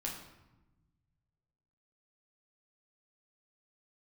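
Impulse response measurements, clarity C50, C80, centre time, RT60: 4.5 dB, 7.5 dB, 38 ms, 1.0 s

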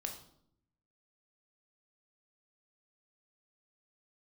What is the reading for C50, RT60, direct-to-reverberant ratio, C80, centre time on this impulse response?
8.5 dB, 0.70 s, 3.0 dB, 12.0 dB, 19 ms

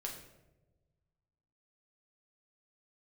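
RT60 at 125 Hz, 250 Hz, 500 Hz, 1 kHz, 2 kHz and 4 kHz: 2.1, 1.6, 1.4, 0.85, 0.75, 0.60 s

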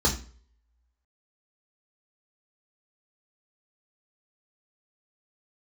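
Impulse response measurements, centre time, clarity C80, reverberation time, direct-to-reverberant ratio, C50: 16 ms, 16.0 dB, 0.45 s, -2.0 dB, 11.5 dB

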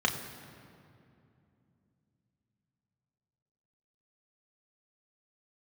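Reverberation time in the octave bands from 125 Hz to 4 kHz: 4.2, 4.0, 2.8, 2.4, 2.1, 1.6 s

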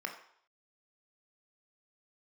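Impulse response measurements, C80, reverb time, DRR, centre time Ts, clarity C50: 11.0 dB, 0.65 s, 2.5 dB, 19 ms, 8.5 dB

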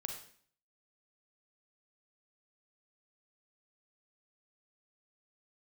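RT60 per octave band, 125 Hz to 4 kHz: 0.65, 0.60, 0.55, 0.50, 0.55, 0.50 s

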